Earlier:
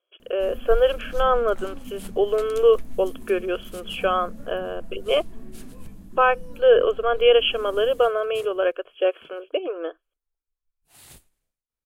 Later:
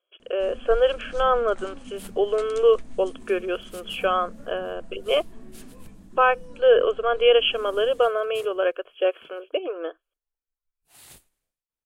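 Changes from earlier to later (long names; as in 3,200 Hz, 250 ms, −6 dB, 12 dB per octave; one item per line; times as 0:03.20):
first sound: add Butterworth low-pass 9,500 Hz 72 dB per octave
master: add low-shelf EQ 230 Hz −6 dB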